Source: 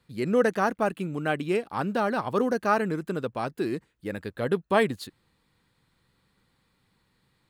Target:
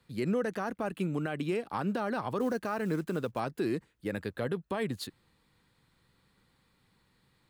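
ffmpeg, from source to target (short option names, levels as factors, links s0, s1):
-filter_complex "[0:a]asettb=1/sr,asplit=3[s0][s1][s2];[s0]atrim=end=2.404[s3];[s1]atrim=start=2.4:end=3.4,asetpts=PTS-STARTPTS,afade=t=in:d=0.004:c=qsin,afade=t=out:st=0.996:d=0.004:c=qsin,acrusher=bits=7:mode=log:mix=0:aa=0.000001[s4];[s2]atrim=start=3.396[s5];[s3][s4]acrossfade=d=0.004:c1=hsin:c2=qsin[s6];[s6][s5]acrossfade=d=0.004:c1=qsin:c2=hsin,acrossover=split=140[s7][s8];[s8]acompressor=threshold=0.0562:ratio=6[s9];[s7][s9]amix=inputs=2:normalize=0,alimiter=limit=0.0794:level=0:latency=1"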